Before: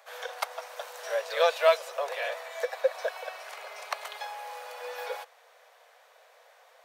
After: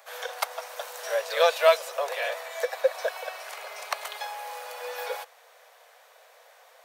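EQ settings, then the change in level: high shelf 7300 Hz +7 dB; +2.5 dB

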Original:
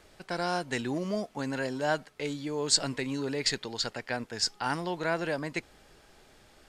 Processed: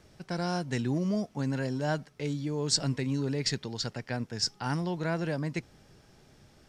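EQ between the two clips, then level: bell 130 Hz +14 dB 2.1 oct; bell 5600 Hz +8 dB 0.26 oct; -5.0 dB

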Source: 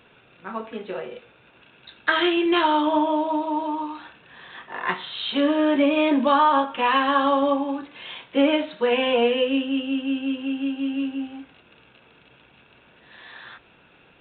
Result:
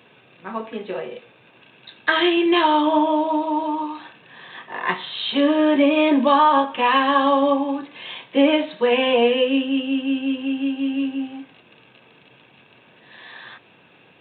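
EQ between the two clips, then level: HPF 100 Hz 24 dB/oct; notch 1400 Hz, Q 7.5; +3.0 dB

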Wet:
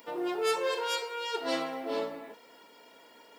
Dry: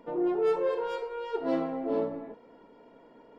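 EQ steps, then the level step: tilt +4 dB/oct; high shelf 2200 Hz +11.5 dB; 0.0 dB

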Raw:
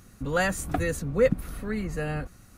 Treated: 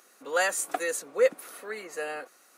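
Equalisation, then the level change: HPF 410 Hz 24 dB/oct; dynamic EQ 8300 Hz, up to +6 dB, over -52 dBFS, Q 0.81; 0.0 dB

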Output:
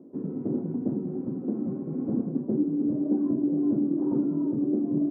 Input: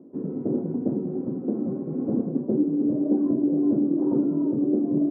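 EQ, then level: dynamic EQ 520 Hz, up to -6 dB, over -37 dBFS, Q 1.2; -1.0 dB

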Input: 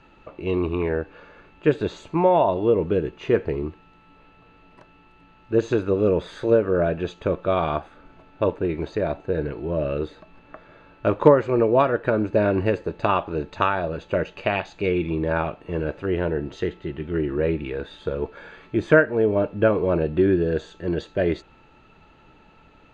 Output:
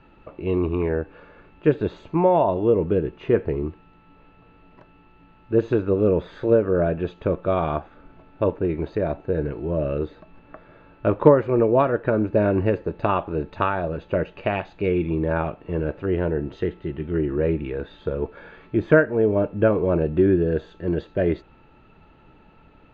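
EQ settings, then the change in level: low shelf 470 Hz +3.5 dB; dynamic EQ 5600 Hz, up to -3 dB, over -44 dBFS, Q 0.73; air absorption 170 m; -1.0 dB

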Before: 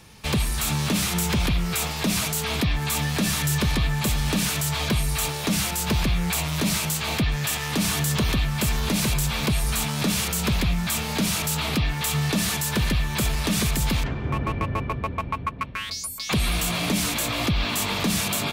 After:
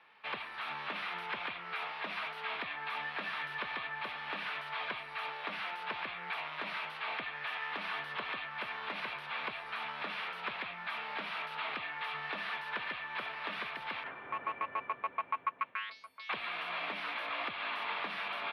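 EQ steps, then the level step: running mean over 6 samples; HPF 1100 Hz 12 dB/oct; air absorption 500 m; 0.0 dB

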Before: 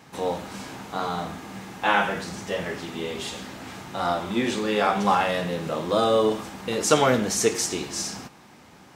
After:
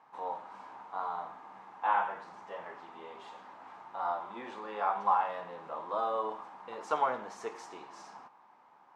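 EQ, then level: band-pass 960 Hz, Q 3.5; -2.0 dB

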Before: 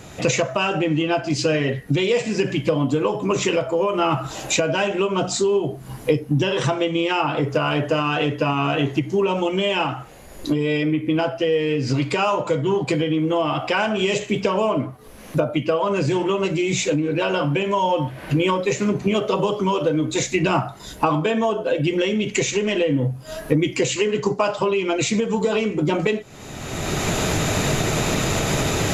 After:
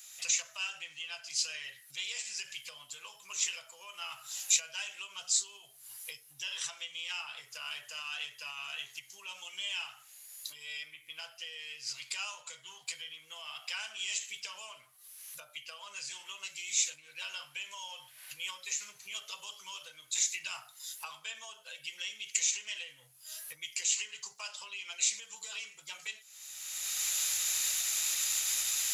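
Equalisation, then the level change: pre-emphasis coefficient 0.97; passive tone stack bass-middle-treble 10-0-10; low shelf 280 Hz -4.5 dB; 0.0 dB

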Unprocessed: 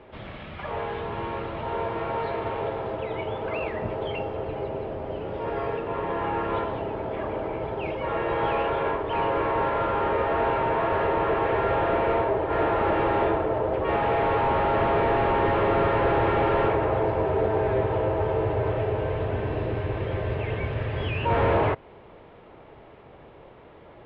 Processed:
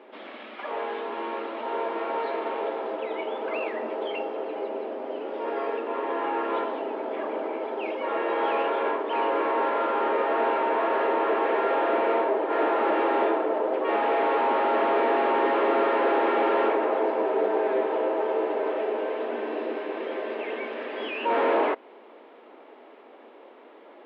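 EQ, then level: brick-wall FIR high-pass 220 Hz; 0.0 dB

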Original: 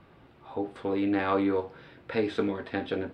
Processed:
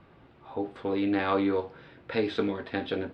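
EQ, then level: dynamic EQ 4100 Hz, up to +6 dB, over -52 dBFS, Q 1.2; air absorption 62 m; 0.0 dB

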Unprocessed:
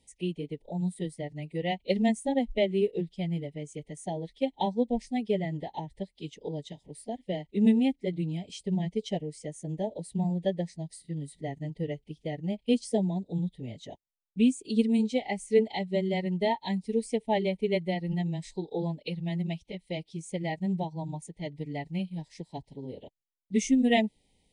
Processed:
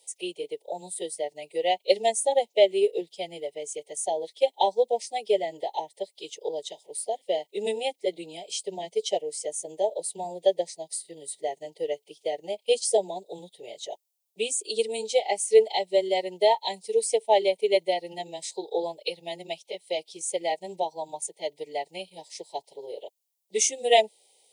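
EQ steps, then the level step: HPF 340 Hz 24 dB/oct; high shelf 5600 Hz +9.5 dB; fixed phaser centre 620 Hz, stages 4; +8.5 dB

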